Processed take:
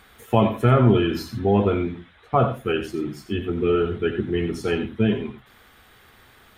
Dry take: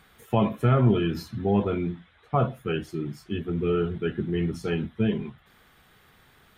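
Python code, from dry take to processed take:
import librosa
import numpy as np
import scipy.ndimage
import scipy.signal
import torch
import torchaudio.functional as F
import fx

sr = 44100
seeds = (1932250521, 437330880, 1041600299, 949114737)

y = fx.peak_eq(x, sr, hz=160.0, db=-14.5, octaves=0.29)
y = y + 10.0 ** (-10.0 / 20.0) * np.pad(y, (int(88 * sr / 1000.0), 0))[:len(y)]
y = F.gain(torch.from_numpy(y), 5.5).numpy()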